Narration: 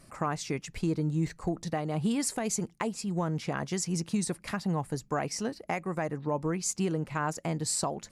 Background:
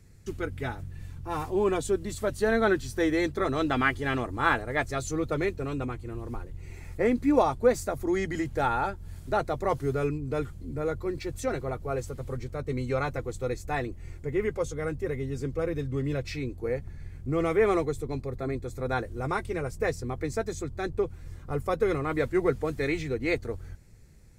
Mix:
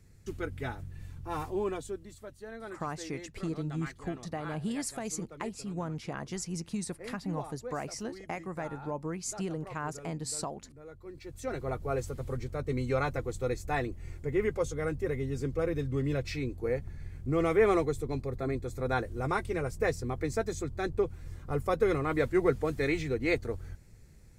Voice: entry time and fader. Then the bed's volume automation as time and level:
2.60 s, −5.5 dB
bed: 0:01.43 −3.5 dB
0:02.40 −19.5 dB
0:10.85 −19.5 dB
0:11.73 −1 dB

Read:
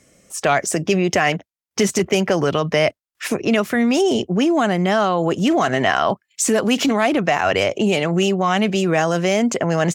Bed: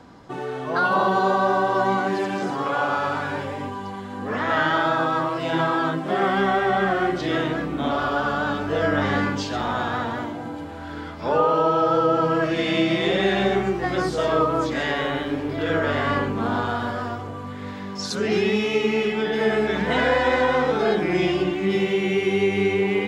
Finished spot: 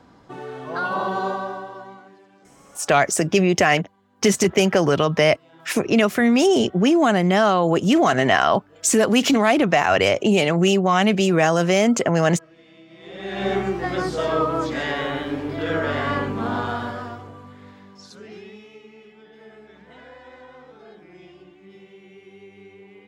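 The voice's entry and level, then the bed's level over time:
2.45 s, +0.5 dB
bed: 0:01.27 −4.5 dB
0:02.23 −28 dB
0:12.87 −28 dB
0:13.50 −1 dB
0:16.75 −1 dB
0:18.89 −25 dB

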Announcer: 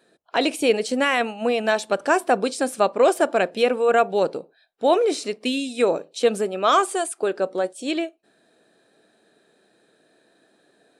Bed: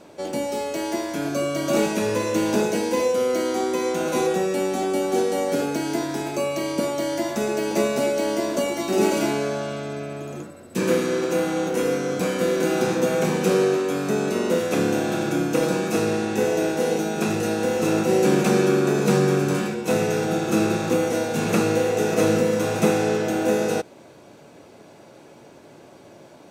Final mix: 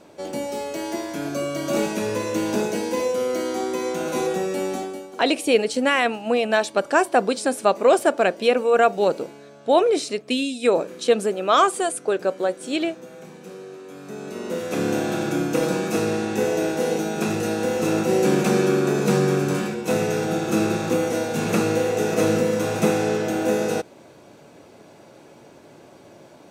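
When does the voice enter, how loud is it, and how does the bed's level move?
4.85 s, +1.0 dB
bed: 0:04.75 −2 dB
0:05.18 −20 dB
0:13.63 −20 dB
0:14.93 −0.5 dB

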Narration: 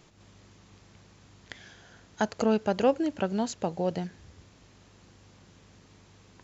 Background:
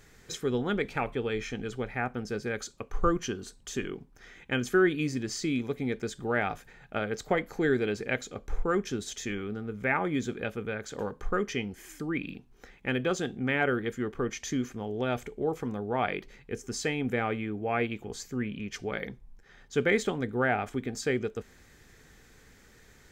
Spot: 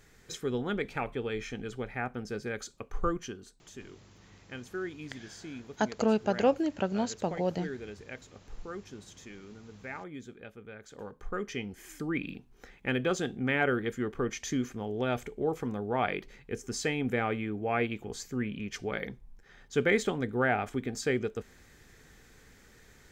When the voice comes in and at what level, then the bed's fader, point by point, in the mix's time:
3.60 s, −1.5 dB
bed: 0:02.96 −3 dB
0:03.81 −13.5 dB
0:10.60 −13.5 dB
0:11.96 −0.5 dB

